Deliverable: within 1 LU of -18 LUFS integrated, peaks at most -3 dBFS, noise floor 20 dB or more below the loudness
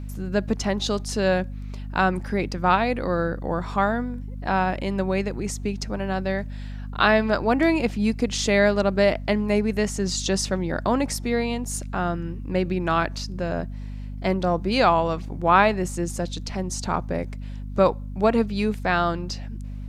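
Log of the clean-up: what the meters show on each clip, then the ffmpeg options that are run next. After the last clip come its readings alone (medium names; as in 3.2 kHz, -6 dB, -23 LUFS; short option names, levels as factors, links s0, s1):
hum 50 Hz; highest harmonic 250 Hz; hum level -31 dBFS; loudness -24.0 LUFS; peak level -3.5 dBFS; loudness target -18.0 LUFS
-> -af "bandreject=f=50:t=h:w=6,bandreject=f=100:t=h:w=6,bandreject=f=150:t=h:w=6,bandreject=f=200:t=h:w=6,bandreject=f=250:t=h:w=6"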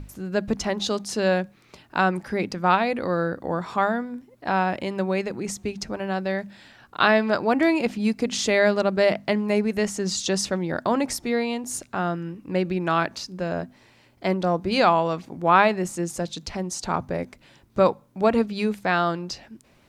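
hum not found; loudness -24.0 LUFS; peak level -4.0 dBFS; loudness target -18.0 LUFS
-> -af "volume=2,alimiter=limit=0.708:level=0:latency=1"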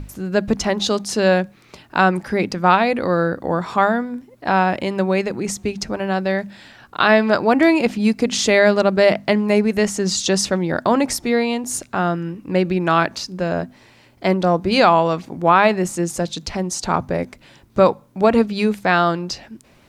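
loudness -18.5 LUFS; peak level -3.0 dBFS; noise floor -51 dBFS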